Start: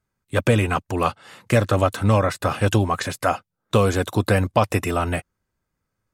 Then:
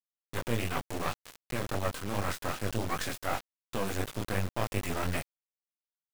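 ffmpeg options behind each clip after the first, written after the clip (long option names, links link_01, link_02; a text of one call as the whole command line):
ffmpeg -i in.wav -af "areverse,acompressor=threshold=-26dB:ratio=6,areverse,flanger=delay=19.5:depth=6.6:speed=2.7,acrusher=bits=4:dc=4:mix=0:aa=0.000001,volume=3dB" out.wav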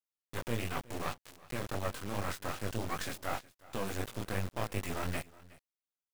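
ffmpeg -i in.wav -af "aecho=1:1:367:0.0891,volume=-4dB" out.wav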